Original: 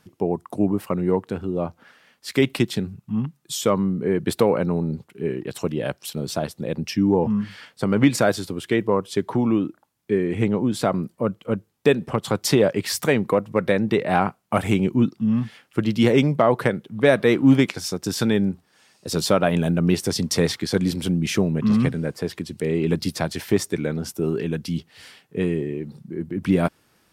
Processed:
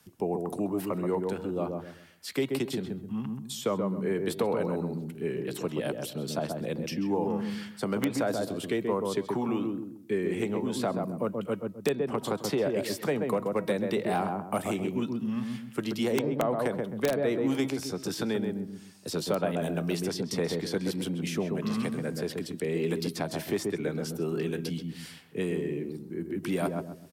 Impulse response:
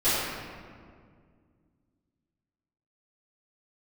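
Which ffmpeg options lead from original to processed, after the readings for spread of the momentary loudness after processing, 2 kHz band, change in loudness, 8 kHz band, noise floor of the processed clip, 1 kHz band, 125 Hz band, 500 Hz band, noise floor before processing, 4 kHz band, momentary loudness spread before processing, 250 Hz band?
7 LU, -10.0 dB, -8.5 dB, -9.0 dB, -48 dBFS, -7.5 dB, -11.0 dB, -7.0 dB, -63 dBFS, -8.5 dB, 10 LU, -9.0 dB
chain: -filter_complex "[0:a]equalizer=f=530:w=7.3:g=-2,asplit=2[a][b];[b]adelay=130,lowpass=f=820:p=1,volume=-3.5dB,asplit=2[c][d];[d]adelay=130,lowpass=f=820:p=1,volume=0.31,asplit=2[e][f];[f]adelay=130,lowpass=f=820:p=1,volume=0.31,asplit=2[g][h];[h]adelay=130,lowpass=f=820:p=1,volume=0.31[i];[c][e][g][i]amix=inputs=4:normalize=0[j];[a][j]amix=inputs=2:normalize=0,aeval=exprs='(mod(1.58*val(0)+1,2)-1)/1.58':c=same,aemphasis=mode=production:type=cd,acrossover=split=160|420|1000|3900[k][l][m][n][o];[k]acompressor=threshold=-32dB:ratio=4[p];[l]acompressor=threshold=-29dB:ratio=4[q];[m]acompressor=threshold=-24dB:ratio=4[r];[n]acompressor=threshold=-37dB:ratio=4[s];[o]acompressor=threshold=-40dB:ratio=4[t];[p][q][r][s][t]amix=inputs=5:normalize=0,bandreject=f=319.1:t=h:w=4,bandreject=f=638.2:t=h:w=4,bandreject=f=957.3:t=h:w=4,bandreject=f=1.2764k:t=h:w=4,bandreject=f=1.5955k:t=h:w=4,bandreject=f=1.9146k:t=h:w=4,bandreject=f=2.2337k:t=h:w=4,bandreject=f=2.5528k:t=h:w=4,bandreject=f=2.8719k:t=h:w=4,bandreject=f=3.191k:t=h:w=4,bandreject=f=3.5101k:t=h:w=4,bandreject=f=3.8292k:t=h:w=4,bandreject=f=4.1483k:t=h:w=4,bandreject=f=4.4674k:t=h:w=4,acrossover=split=140[u][v];[u]acompressor=threshold=-48dB:ratio=6[w];[w][v]amix=inputs=2:normalize=0,volume=-4dB"

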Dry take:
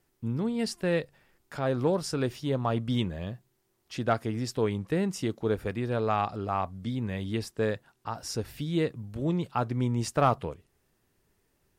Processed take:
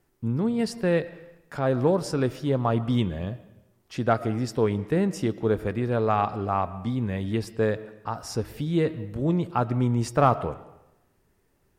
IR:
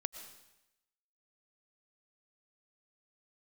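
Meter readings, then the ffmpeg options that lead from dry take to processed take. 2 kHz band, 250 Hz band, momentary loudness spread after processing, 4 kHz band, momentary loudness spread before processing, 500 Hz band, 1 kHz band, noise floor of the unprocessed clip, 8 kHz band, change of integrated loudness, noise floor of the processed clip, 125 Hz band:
+2.5 dB, +4.5 dB, 10 LU, -1.0 dB, 10 LU, +4.5 dB, +4.0 dB, -73 dBFS, -0.5 dB, +4.0 dB, -68 dBFS, +4.5 dB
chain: -filter_complex "[0:a]bandreject=f=314.5:t=h:w=4,bandreject=f=629:t=h:w=4,bandreject=f=943.5:t=h:w=4,bandreject=f=1.258k:t=h:w=4,bandreject=f=1.5725k:t=h:w=4,bandreject=f=1.887k:t=h:w=4,bandreject=f=2.2015k:t=h:w=4,bandreject=f=2.516k:t=h:w=4,bandreject=f=2.8305k:t=h:w=4,bandreject=f=3.145k:t=h:w=4,bandreject=f=3.4595k:t=h:w=4,bandreject=f=3.774k:t=h:w=4,bandreject=f=4.0885k:t=h:w=4,bandreject=f=4.403k:t=h:w=4,bandreject=f=4.7175k:t=h:w=4,bandreject=f=5.032k:t=h:w=4,bandreject=f=5.3465k:t=h:w=4,bandreject=f=5.661k:t=h:w=4,asplit=2[a][b];[1:a]atrim=start_sample=2205,lowpass=2.4k[c];[b][c]afir=irnorm=-1:irlink=0,volume=-2.5dB[d];[a][d]amix=inputs=2:normalize=0"

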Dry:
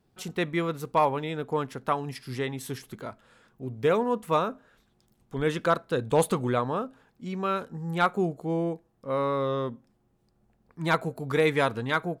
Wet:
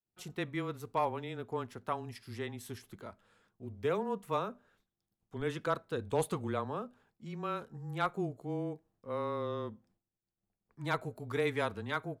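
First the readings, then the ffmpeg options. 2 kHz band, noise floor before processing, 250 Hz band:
-9.5 dB, -69 dBFS, -9.0 dB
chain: -af "agate=range=-33dB:threshold=-57dB:ratio=3:detection=peak,afreqshift=-17,volume=-9dB"

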